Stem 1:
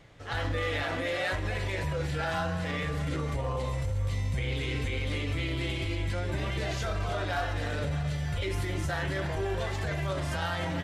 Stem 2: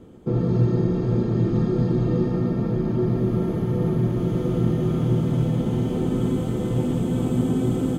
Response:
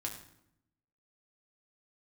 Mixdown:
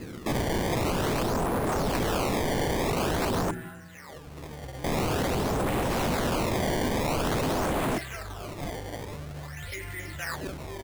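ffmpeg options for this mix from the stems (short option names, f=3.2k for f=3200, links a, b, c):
-filter_complex "[0:a]equalizer=f=1.9k:w=1.4:g=12.5,adelay=1300,volume=-9dB,afade=t=in:st=4.07:d=0.55:silence=0.281838[a];[1:a]acontrast=78,alimiter=limit=-10.5dB:level=0:latency=1:release=280,volume=-1.5dB,asplit=3[b][c][d];[b]atrim=end=3.51,asetpts=PTS-STARTPTS,afade=t=out:st=3.506:d=0.004:c=hsin[e];[c]atrim=start=3.51:end=4.84,asetpts=PTS-STARTPTS,volume=0[f];[d]atrim=start=4.84,asetpts=PTS-STARTPTS,afade=t=in:d=0.004:c=hsin[g];[e][f][g]concat=n=3:v=0:a=1,asplit=2[h][i];[i]volume=-12.5dB[j];[2:a]atrim=start_sample=2205[k];[j][k]afir=irnorm=-1:irlink=0[l];[a][h][l]amix=inputs=3:normalize=0,acrusher=samples=19:mix=1:aa=0.000001:lfo=1:lforange=30.4:lforate=0.48,aeval=exprs='0.0794*(abs(mod(val(0)/0.0794+3,4)-2)-1)':c=same"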